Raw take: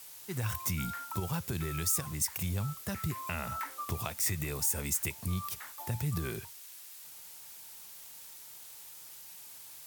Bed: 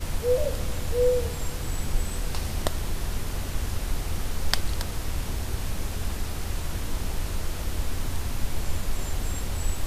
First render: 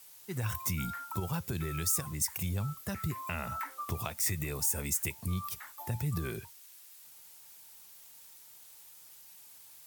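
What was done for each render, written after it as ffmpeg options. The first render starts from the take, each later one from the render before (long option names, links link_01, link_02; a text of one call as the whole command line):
ffmpeg -i in.wav -af "afftdn=noise_reduction=6:noise_floor=-50" out.wav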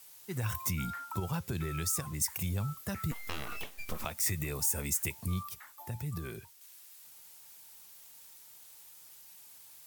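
ffmpeg -i in.wav -filter_complex "[0:a]asettb=1/sr,asplit=3[link_01][link_02][link_03];[link_01]atrim=end=0.704[link_04];[link_02]atrim=start=0.7:end=2.14,asetpts=PTS-STARTPTS,afade=type=in:duration=0.004:curve=qsin,afade=type=out:start_time=1.436:duration=0.004:curve=qsin,highshelf=frequency=9200:gain=-5[link_05];[link_03]atrim=start=2.136[link_06];[link_04][link_05]acrossfade=duration=0.004:curve1=hsin:curve2=qsin[link_07];[link_07][link_06]acrossfade=duration=0.004:curve1=qsin:curve2=hsin,asettb=1/sr,asplit=3[link_08][link_09][link_10];[link_08]atrim=end=3.114[link_11];[link_09]atrim=start=3.11:end=4.05,asetpts=PTS-STARTPTS,afade=type=in:duration=0.004:curve=qsin,afade=type=out:start_time=0.936:duration=0.004:curve=qsin,aeval=exprs='abs(val(0))':channel_layout=same[link_12];[link_10]atrim=start=4.046[link_13];[link_11][link_12]acrossfade=duration=0.004:curve1=hsin:curve2=qsin[link_14];[link_14][link_13]acrossfade=duration=0.004:curve1=qsin:curve2=hsin,asplit=3[link_15][link_16][link_17];[link_15]atrim=end=5.432[link_18];[link_16]atrim=start=5.428:end=6.612,asetpts=PTS-STARTPTS,volume=-4.5dB[link_19];[link_17]atrim=start=6.608[link_20];[link_18][link_19]acrossfade=duration=0.004:curve1=hsin:curve2=hsin[link_21];[link_21][link_20]acrossfade=duration=0.004:curve1=hsin:curve2=hsin" out.wav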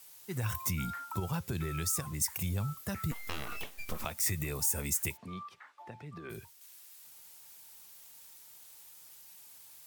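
ffmpeg -i in.wav -filter_complex "[0:a]asplit=3[link_01][link_02][link_03];[link_01]afade=type=out:start_time=5.16:duration=0.02[link_04];[link_02]highpass=250,lowpass=2800,afade=type=in:start_time=5.16:duration=0.02,afade=type=out:start_time=6.29:duration=0.02[link_05];[link_03]afade=type=in:start_time=6.29:duration=0.02[link_06];[link_04][link_05][link_06]amix=inputs=3:normalize=0" out.wav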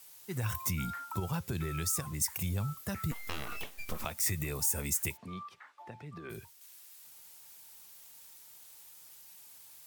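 ffmpeg -i in.wav -af anull out.wav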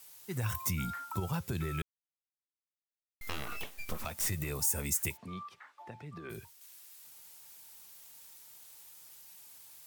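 ffmpeg -i in.wav -filter_complex "[0:a]asettb=1/sr,asplit=3[link_01][link_02][link_03];[link_01]atrim=end=3.964[link_04];[link_02]atrim=start=3.96:end=4.5,asetpts=PTS-STARTPTS,afade=type=in:duration=0.004:curve=qsin,afade=type=out:start_time=0.536:duration=0.004:curve=qsin,aeval=exprs='clip(val(0),-1,0.0211)':channel_layout=same[link_05];[link_03]atrim=start=4.496[link_06];[link_04][link_05]acrossfade=duration=0.004:curve1=hsin:curve2=qsin[link_07];[link_07][link_06]acrossfade=duration=0.004:curve1=qsin:curve2=hsin,asplit=3[link_08][link_09][link_10];[link_08]atrim=end=1.82,asetpts=PTS-STARTPTS,afade=type=out:start_time=1.816:duration=0.004:curve=hsin[link_11];[link_09]atrim=start=1.82:end=3.21,asetpts=PTS-STARTPTS,volume=0[link_12];[link_10]atrim=start=3.21,asetpts=PTS-STARTPTS,afade=type=in:duration=0.004:curve=hsin[link_13];[link_11][link_12][link_13]concat=n=3:v=0:a=1" out.wav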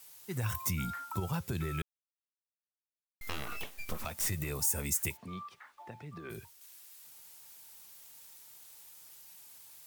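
ffmpeg -i in.wav -af "acrusher=bits=11:mix=0:aa=0.000001" out.wav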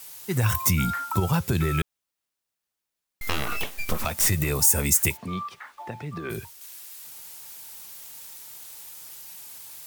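ffmpeg -i in.wav -af "volume=11.5dB" out.wav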